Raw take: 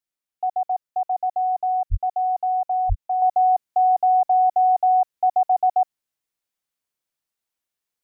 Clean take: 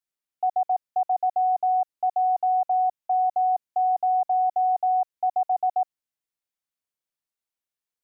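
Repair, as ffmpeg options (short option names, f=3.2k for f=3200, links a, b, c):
-filter_complex "[0:a]asplit=3[a][b][c];[a]afade=t=out:st=1.9:d=0.02[d];[b]highpass=f=140:w=0.5412,highpass=f=140:w=1.3066,afade=t=in:st=1.9:d=0.02,afade=t=out:st=2.02:d=0.02[e];[c]afade=t=in:st=2.02:d=0.02[f];[d][e][f]amix=inputs=3:normalize=0,asplit=3[g][h][i];[g]afade=t=out:st=2.88:d=0.02[j];[h]highpass=f=140:w=0.5412,highpass=f=140:w=1.3066,afade=t=in:st=2.88:d=0.02,afade=t=out:st=3:d=0.02[k];[i]afade=t=in:st=3:d=0.02[l];[j][k][l]amix=inputs=3:normalize=0,asetnsamples=n=441:p=0,asendcmd='3.22 volume volume -5dB',volume=0dB"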